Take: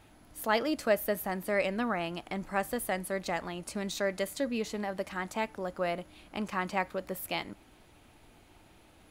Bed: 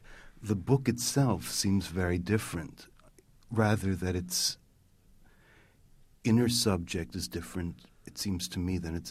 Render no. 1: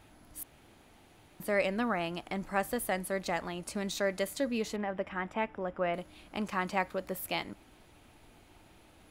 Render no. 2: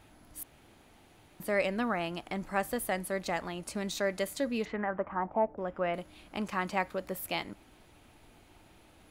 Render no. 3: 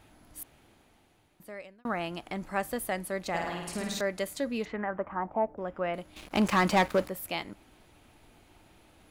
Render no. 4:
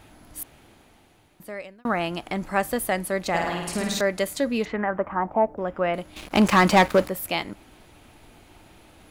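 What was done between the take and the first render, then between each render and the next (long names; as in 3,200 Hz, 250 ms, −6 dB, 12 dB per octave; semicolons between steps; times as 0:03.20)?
0:00.43–0:01.40: fill with room tone; 0:04.76–0:05.94: Savitzky-Golay smoothing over 25 samples
0:04.64–0:05.57: low-pass with resonance 2,100 Hz → 580 Hz, resonance Q 2.6
0:00.41–0:01.85: fade out; 0:03.29–0:04.01: flutter between parallel walls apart 9 metres, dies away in 0.99 s; 0:06.16–0:07.08: leveller curve on the samples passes 3
level +7.5 dB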